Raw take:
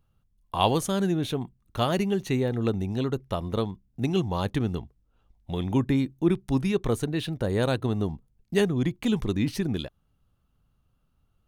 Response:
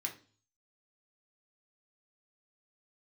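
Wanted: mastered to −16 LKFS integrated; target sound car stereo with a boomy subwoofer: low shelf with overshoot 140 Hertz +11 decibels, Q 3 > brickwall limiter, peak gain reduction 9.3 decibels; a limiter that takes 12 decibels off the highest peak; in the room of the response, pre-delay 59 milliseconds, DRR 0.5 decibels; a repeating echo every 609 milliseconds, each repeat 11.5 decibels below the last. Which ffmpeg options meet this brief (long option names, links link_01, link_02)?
-filter_complex "[0:a]alimiter=limit=-18.5dB:level=0:latency=1,aecho=1:1:609|1218|1827:0.266|0.0718|0.0194,asplit=2[link_01][link_02];[1:a]atrim=start_sample=2205,adelay=59[link_03];[link_02][link_03]afir=irnorm=-1:irlink=0,volume=-1dB[link_04];[link_01][link_04]amix=inputs=2:normalize=0,lowshelf=frequency=140:width_type=q:width=3:gain=11,volume=6dB,alimiter=limit=-6dB:level=0:latency=1"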